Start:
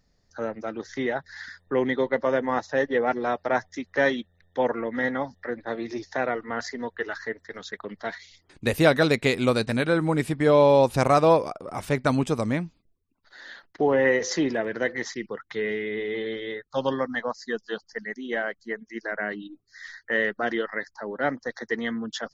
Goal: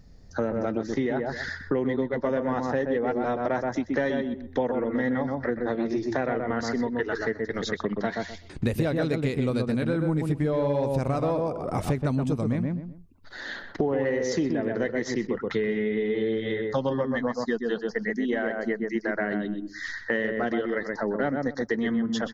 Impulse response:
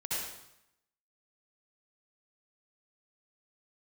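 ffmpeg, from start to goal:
-filter_complex "[0:a]asplit=2[a][b];[b]adelay=126,lowpass=f=1.4k:p=1,volume=-4dB,asplit=2[c][d];[d]adelay=126,lowpass=f=1.4k:p=1,volume=0.17,asplit=2[e][f];[f]adelay=126,lowpass=f=1.4k:p=1,volume=0.17[g];[c][e][g]amix=inputs=3:normalize=0[h];[a][h]amix=inputs=2:normalize=0,acontrast=53,lowshelf=f=390:g=11.5,acompressor=threshold=-24dB:ratio=6"

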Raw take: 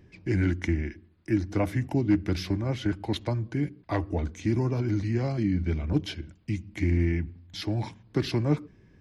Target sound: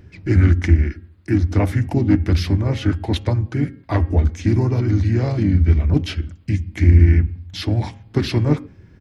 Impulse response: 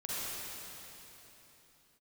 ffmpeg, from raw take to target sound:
-filter_complex "[0:a]equalizer=f=85:w=2.2:g=9,bandreject=f=270.4:t=h:w=4,bandreject=f=540.8:t=h:w=4,bandreject=f=811.2:t=h:w=4,bandreject=f=1.0816k:t=h:w=4,bandreject=f=1.352k:t=h:w=4,bandreject=f=1.6224k:t=h:w=4,bandreject=f=1.8928k:t=h:w=4,bandreject=f=2.1632k:t=h:w=4,bandreject=f=2.4336k:t=h:w=4,bandreject=f=2.704k:t=h:w=4,bandreject=f=2.9744k:t=h:w=4,bandreject=f=3.2448k:t=h:w=4,asplit=2[a][b];[b]asoftclip=type=tanh:threshold=-23dB,volume=-11dB[c];[a][c]amix=inputs=2:normalize=0,asplit=2[d][e];[e]asetrate=37084,aresample=44100,atempo=1.18921,volume=-6dB[f];[d][f]amix=inputs=2:normalize=0,volume=4.5dB"

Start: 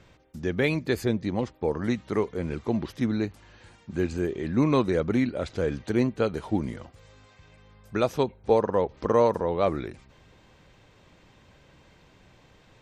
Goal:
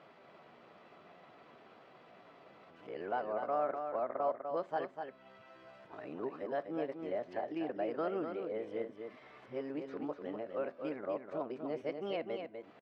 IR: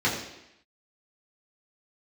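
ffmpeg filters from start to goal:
-filter_complex "[0:a]areverse,equalizer=f=530:t=o:w=0.29:g=2.5,acompressor=threshold=-45dB:ratio=2,asetrate=55563,aresample=44100,atempo=0.793701,highpass=320,lowpass=2.1k,aecho=1:1:248:0.473,asplit=2[a][b];[1:a]atrim=start_sample=2205,atrim=end_sample=3528,asetrate=34839,aresample=44100[c];[b][c]afir=irnorm=-1:irlink=0,volume=-31dB[d];[a][d]amix=inputs=2:normalize=0,volume=1dB"

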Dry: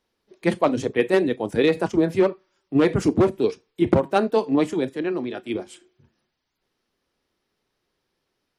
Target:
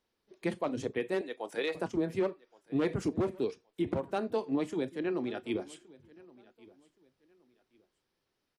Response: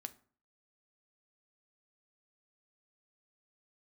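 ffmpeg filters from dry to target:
-filter_complex "[0:a]asettb=1/sr,asplit=3[a][b][c];[a]atrim=end=1.214[d];[b]atrim=start=1.21:end=1.75,asetpts=PTS-STARTPTS,afade=t=in:d=0.004:c=qsin,afade=t=out:st=0.536:d=0.004:c=qsin,highpass=560[e];[c]atrim=start=1.746[f];[d][e]acrossfade=d=0.004:c1=hsin:c2=qsin[g];[g][f]acrossfade=d=0.004:c1=qsin:c2=hsin,alimiter=limit=-15.5dB:level=0:latency=1:release=400,aecho=1:1:1121|2242:0.0708|0.0198,volume=-6dB"

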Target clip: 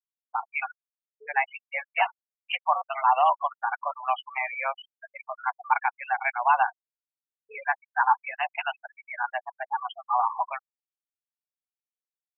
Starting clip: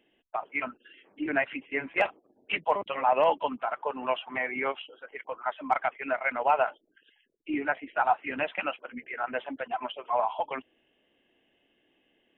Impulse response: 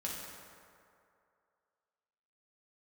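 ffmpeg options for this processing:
-af "highshelf=f=2.8k:g=-7.5,highpass=f=550:t=q:w=0.5412,highpass=f=550:t=q:w=1.307,lowpass=f=3.4k:t=q:w=0.5176,lowpass=f=3.4k:t=q:w=0.7071,lowpass=f=3.4k:t=q:w=1.932,afreqshift=130,afftfilt=real='re*gte(hypot(re,im),0.0282)':imag='im*gte(hypot(re,im),0.0282)':win_size=1024:overlap=0.75,volume=4dB"

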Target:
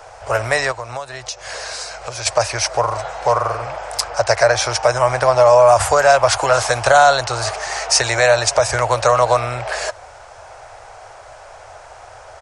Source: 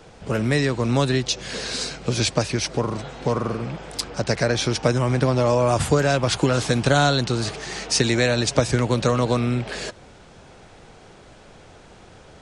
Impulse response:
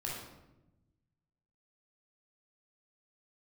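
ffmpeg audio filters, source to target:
-filter_complex "[0:a]firequalizer=gain_entry='entry(110,0);entry(170,-25);entry(620,13);entry(3500,-1);entry(5300,7)':delay=0.05:min_phase=1,asplit=3[a][b][c];[a]afade=t=out:st=0.71:d=0.02[d];[b]acompressor=threshold=-27dB:ratio=5,afade=t=in:st=0.71:d=0.02,afade=t=out:st=2.25:d=0.02[e];[c]afade=t=in:st=2.25:d=0.02[f];[d][e][f]amix=inputs=3:normalize=0,alimiter=level_in=2dB:limit=-1dB:release=50:level=0:latency=1,volume=-1dB"

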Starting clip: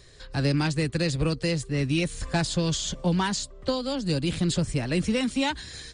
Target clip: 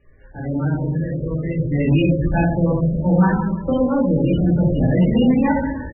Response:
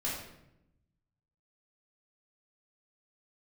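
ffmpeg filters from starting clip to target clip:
-filter_complex "[0:a]asettb=1/sr,asplit=3[a][b][c];[a]atrim=end=0.774[d];[b]atrim=start=0.77:end=1.56,asetpts=PTS-STARTPTS,afade=t=in:d=0.004:c=qsin,afade=t=out:st=0.786:d=0.004:c=qsin,acompressor=threshold=-31dB:ratio=5[e];[c]atrim=start=1.556[f];[d][e]acrossfade=d=0.004:c1=hsin:c2=qsin[g];[g][f]acrossfade=d=0.004:c1=qsin:c2=hsin,asplit=2[h][i];[i]adelay=325,lowpass=f=1.6k:p=1,volume=-21.5dB,asplit=2[j][k];[k]adelay=325,lowpass=f=1.6k:p=1,volume=0.44,asplit=2[l][m];[m]adelay=325,lowpass=f=1.6k:p=1,volume=0.44[n];[h][j][l][n]amix=inputs=4:normalize=0[o];[1:a]atrim=start_sample=2205,asetrate=41454,aresample=44100[p];[o][p]afir=irnorm=-1:irlink=0,asoftclip=type=tanh:threshold=-12dB,aresample=11025,aresample=44100,highshelf=f=2.7k:g=-9.5,dynaudnorm=f=230:g=7:m=12.5dB,volume=-5dB" -ar 22050 -c:a libmp3lame -b:a 8k

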